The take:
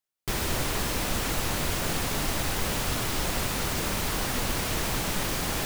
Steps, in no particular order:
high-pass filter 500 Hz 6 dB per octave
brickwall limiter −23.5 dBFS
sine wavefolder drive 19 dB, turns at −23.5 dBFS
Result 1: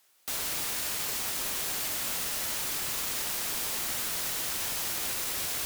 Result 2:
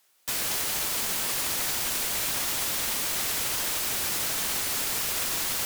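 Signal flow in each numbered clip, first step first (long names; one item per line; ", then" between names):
high-pass filter, then sine wavefolder, then brickwall limiter
brickwall limiter, then high-pass filter, then sine wavefolder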